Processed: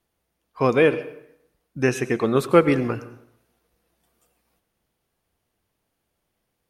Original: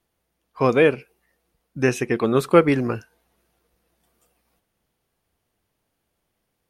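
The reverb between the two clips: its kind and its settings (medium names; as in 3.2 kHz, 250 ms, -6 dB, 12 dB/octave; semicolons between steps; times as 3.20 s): plate-style reverb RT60 0.76 s, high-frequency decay 0.8×, pre-delay 80 ms, DRR 14.5 dB; trim -1 dB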